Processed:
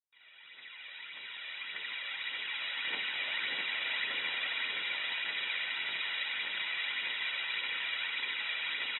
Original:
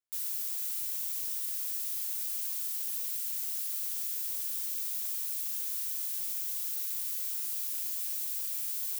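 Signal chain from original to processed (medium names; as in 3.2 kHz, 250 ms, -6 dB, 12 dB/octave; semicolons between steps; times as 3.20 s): fade-in on the opening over 2.76 s; comb 2.1 ms, depth 82%; phaser 1.7 Hz, delay 1.8 ms, feedback 51%; 2.84–4.48 s: peaking EQ 330 Hz +6 dB 3 oct; band-pass 230–6400 Hz; peaking EQ 2.1 kHz +12.5 dB 0.75 oct; on a send: two-band feedback delay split 2.7 kHz, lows 658 ms, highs 393 ms, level -3.5 dB; on the sum: trim +8.5 dB; AAC 16 kbps 22.05 kHz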